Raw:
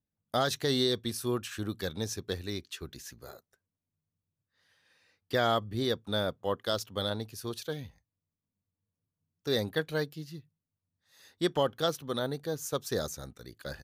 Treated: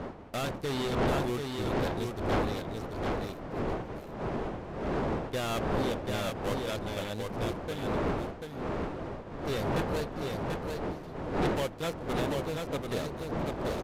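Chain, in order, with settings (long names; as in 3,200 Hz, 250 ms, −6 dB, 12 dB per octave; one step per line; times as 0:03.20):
gap after every zero crossing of 0.24 ms
wind on the microphone 580 Hz −31 dBFS
soft clipping −23 dBFS, distortion −8 dB
on a send: single-tap delay 738 ms −4 dB
on the sum: downsampling to 32,000 Hz
level −1 dB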